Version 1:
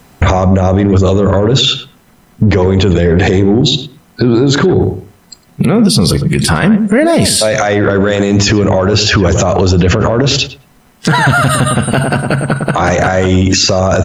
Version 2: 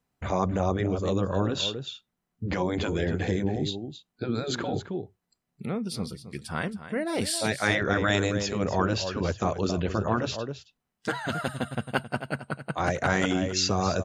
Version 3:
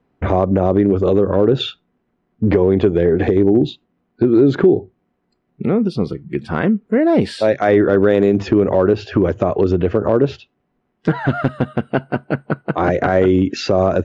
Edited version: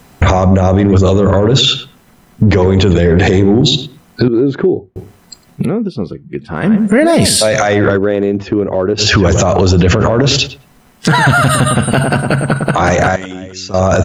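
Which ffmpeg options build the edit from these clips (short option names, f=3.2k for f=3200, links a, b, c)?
-filter_complex "[2:a]asplit=3[a][b][c];[0:a]asplit=5[d][e][f][g][h];[d]atrim=end=4.282[i];[a]atrim=start=4.278:end=4.962[j];[e]atrim=start=4.958:end=5.75[k];[b]atrim=start=5.51:end=6.79[l];[f]atrim=start=6.55:end=7.99[m];[c]atrim=start=7.95:end=9.01[n];[g]atrim=start=8.97:end=13.162[o];[1:a]atrim=start=13.158:end=13.742[p];[h]atrim=start=13.738[q];[i][j]acrossfade=d=0.004:c1=hsin:c2=hsin[r];[r][k]acrossfade=d=0.004:c1=hsin:c2=hsin[s];[s][l]acrossfade=d=0.24:c1=tri:c2=tri[t];[t][m]acrossfade=d=0.24:c1=tri:c2=tri[u];[u][n]acrossfade=d=0.04:c1=tri:c2=tri[v];[v][o]acrossfade=d=0.04:c1=tri:c2=tri[w];[w][p]acrossfade=d=0.004:c1=hsin:c2=hsin[x];[x][q]acrossfade=d=0.004:c1=hsin:c2=hsin"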